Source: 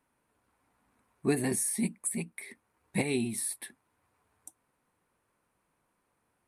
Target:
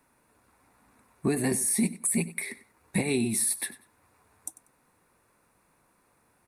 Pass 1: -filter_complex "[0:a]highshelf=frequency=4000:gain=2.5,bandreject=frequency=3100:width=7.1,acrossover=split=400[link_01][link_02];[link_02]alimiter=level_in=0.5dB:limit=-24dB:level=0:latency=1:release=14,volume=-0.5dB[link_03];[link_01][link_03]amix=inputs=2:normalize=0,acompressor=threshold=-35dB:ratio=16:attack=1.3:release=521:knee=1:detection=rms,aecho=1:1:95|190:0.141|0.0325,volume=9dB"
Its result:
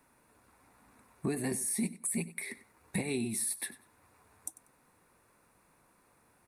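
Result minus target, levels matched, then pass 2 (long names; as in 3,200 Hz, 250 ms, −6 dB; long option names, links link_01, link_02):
downward compressor: peak gain reduction +7 dB
-filter_complex "[0:a]highshelf=frequency=4000:gain=2.5,bandreject=frequency=3100:width=7.1,acrossover=split=400[link_01][link_02];[link_02]alimiter=level_in=0.5dB:limit=-24dB:level=0:latency=1:release=14,volume=-0.5dB[link_03];[link_01][link_03]amix=inputs=2:normalize=0,acompressor=threshold=-27.5dB:ratio=16:attack=1.3:release=521:knee=1:detection=rms,aecho=1:1:95|190:0.141|0.0325,volume=9dB"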